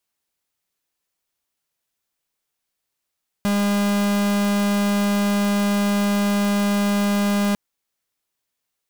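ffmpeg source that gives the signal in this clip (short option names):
-f lavfi -i "aevalsrc='0.106*(2*lt(mod(203*t,1),0.45)-1)':d=4.1:s=44100"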